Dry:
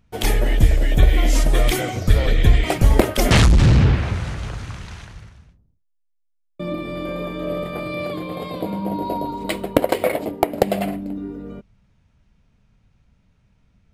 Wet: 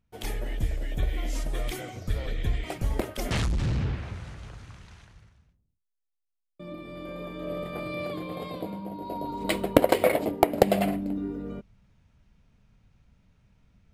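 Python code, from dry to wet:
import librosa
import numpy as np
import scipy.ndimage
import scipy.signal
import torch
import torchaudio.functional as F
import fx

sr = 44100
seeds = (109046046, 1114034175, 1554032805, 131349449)

y = fx.gain(x, sr, db=fx.line((6.61, -14.0), (7.8, -6.5), (8.5, -6.5), (8.95, -13.5), (9.53, -2.0)))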